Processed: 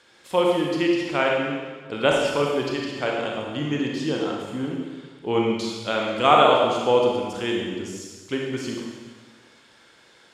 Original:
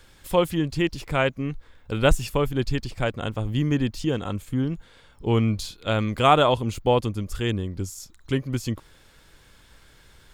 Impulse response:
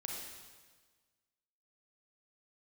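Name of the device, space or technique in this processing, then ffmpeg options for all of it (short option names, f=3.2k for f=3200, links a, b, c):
supermarket ceiling speaker: -filter_complex "[0:a]highpass=260,lowpass=6.9k[a];[1:a]atrim=start_sample=2205[b];[a][b]afir=irnorm=-1:irlink=0,volume=3.5dB"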